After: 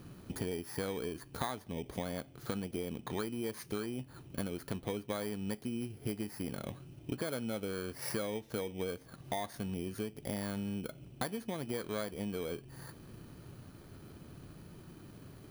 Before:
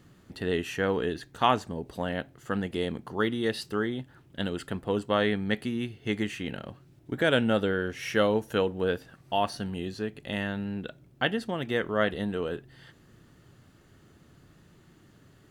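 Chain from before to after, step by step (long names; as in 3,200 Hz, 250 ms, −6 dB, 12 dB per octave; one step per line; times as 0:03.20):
samples in bit-reversed order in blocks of 16 samples
high-shelf EQ 6,800 Hz −7 dB
downward compressor 10 to 1, threshold −40 dBFS, peak gain reduction 21.5 dB
level +5.5 dB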